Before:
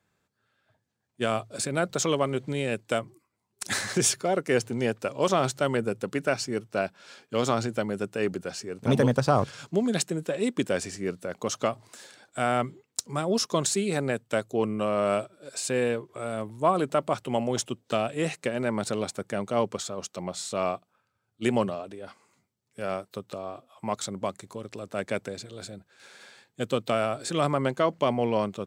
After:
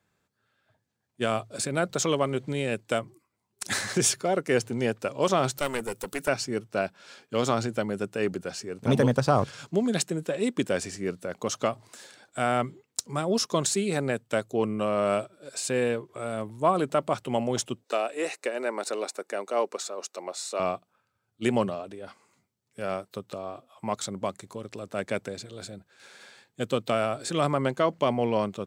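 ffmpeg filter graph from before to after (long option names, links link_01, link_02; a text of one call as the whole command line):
ffmpeg -i in.wav -filter_complex "[0:a]asettb=1/sr,asplit=3[link_01][link_02][link_03];[link_01]atrim=end=5.584[link_04];[link_02]atrim=start=5.58:end=6.28,asetpts=PTS-STARTPTS,afade=type=in:duration=0.004:curve=qsin,afade=type=out:start_time=0.696:duration=0.004:curve=qsin,aemphasis=mode=production:type=bsi,acompressor=mode=upward:threshold=-36dB:ratio=2.5:attack=3.2:release=140:knee=2.83:detection=peak,aeval=exprs='clip(val(0),-1,0.0251)':channel_layout=same[link_05];[link_03]atrim=start=6.276[link_06];[link_04][link_05]acrossfade=duration=0.004:curve1=hsin:curve2=qsin[link_07];[link_07][link_06]acrossfade=duration=0.004:curve1=qsin:curve2=hsin,asettb=1/sr,asplit=3[link_08][link_09][link_10];[link_08]atrim=end=17.844[link_11];[link_09]atrim=start=17.84:end=20.6,asetpts=PTS-STARTPTS,afade=type=in:duration=0.004:curve=qsin,afade=type=out:start_time=2.756:duration=0.004:curve=qsin,highpass=frequency=330:width=0.5412,highpass=frequency=330:width=1.3066,bandreject=frequency=3200:width=6.6[link_12];[link_10]atrim=start=20.596[link_13];[link_11][link_12]acrossfade=duration=0.004:curve1=hsin:curve2=qsin[link_14];[link_14][link_13]acrossfade=duration=0.004:curve1=qsin:curve2=hsin" out.wav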